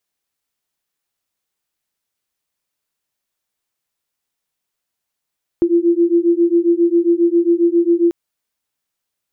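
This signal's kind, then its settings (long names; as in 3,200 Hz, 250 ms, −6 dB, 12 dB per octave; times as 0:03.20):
two tones that beat 338 Hz, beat 7.4 Hz, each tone −14 dBFS 2.49 s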